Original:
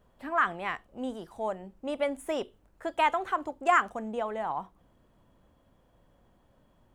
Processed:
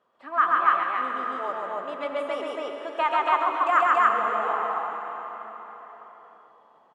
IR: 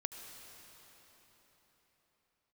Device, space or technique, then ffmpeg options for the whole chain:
station announcement: -filter_complex "[0:a]highpass=390,lowpass=5000,equalizer=f=1200:t=o:w=0.27:g=10.5,aecho=1:1:134.1|279.9:0.891|1[s0];[1:a]atrim=start_sample=2205[s1];[s0][s1]afir=irnorm=-1:irlink=0"

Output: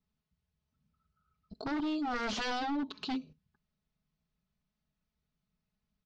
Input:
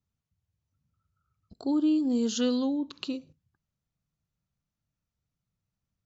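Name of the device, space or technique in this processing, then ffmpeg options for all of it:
synthesiser wavefolder: -af "aecho=1:1:4.7:0.81,aeval=exprs='0.0355*(abs(mod(val(0)/0.0355+3,4)-2)-1)':c=same,lowpass=f=5100:w=0.5412,lowpass=f=5100:w=1.3066"

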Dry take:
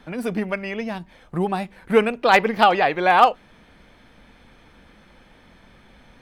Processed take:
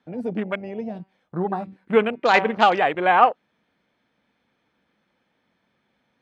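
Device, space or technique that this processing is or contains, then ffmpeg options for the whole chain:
over-cleaned archive recording: -filter_complex "[0:a]asplit=3[s0][s1][s2];[s0]afade=t=out:st=0.98:d=0.02[s3];[s1]bandreject=f=191.6:t=h:w=4,bandreject=f=383.2:t=h:w=4,bandreject=f=574.8:t=h:w=4,bandreject=f=766.4:t=h:w=4,bandreject=f=958:t=h:w=4,bandreject=f=1149.6:t=h:w=4,bandreject=f=1341.2:t=h:w=4,bandreject=f=1532.8:t=h:w=4,bandreject=f=1724.4:t=h:w=4,bandreject=f=1916:t=h:w=4,bandreject=f=2107.6:t=h:w=4,bandreject=f=2299.2:t=h:w=4,bandreject=f=2490.8:t=h:w=4,bandreject=f=2682.4:t=h:w=4,bandreject=f=2874:t=h:w=4,bandreject=f=3065.6:t=h:w=4,bandreject=f=3257.2:t=h:w=4,bandreject=f=3448.8:t=h:w=4,bandreject=f=3640.4:t=h:w=4,bandreject=f=3832:t=h:w=4,bandreject=f=4023.6:t=h:w=4,bandreject=f=4215.2:t=h:w=4,bandreject=f=4406.8:t=h:w=4,bandreject=f=4598.4:t=h:w=4,bandreject=f=4790:t=h:w=4,bandreject=f=4981.6:t=h:w=4,afade=t=in:st=0.98:d=0.02,afade=t=out:st=2.57:d=0.02[s4];[s2]afade=t=in:st=2.57:d=0.02[s5];[s3][s4][s5]amix=inputs=3:normalize=0,highpass=140,lowpass=7200,afwtdn=0.0398,volume=0.891"

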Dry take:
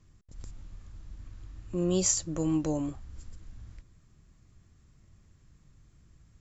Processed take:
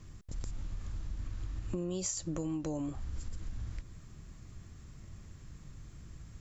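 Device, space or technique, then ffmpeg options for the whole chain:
serial compression, peaks first: -af "acompressor=threshold=0.0158:ratio=6,acompressor=threshold=0.00562:ratio=2.5,volume=2.99"

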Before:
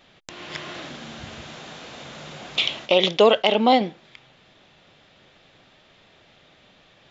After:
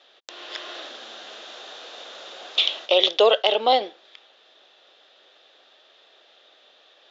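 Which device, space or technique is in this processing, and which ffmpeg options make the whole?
phone speaker on a table: -af "highpass=f=400:w=0.5412,highpass=f=400:w=1.3066,equalizer=f=960:t=q:w=4:g=-4,equalizer=f=2200:t=q:w=4:g=-7,equalizer=f=3600:t=q:w=4:g=5,lowpass=f=6500:w=0.5412,lowpass=f=6500:w=1.3066"

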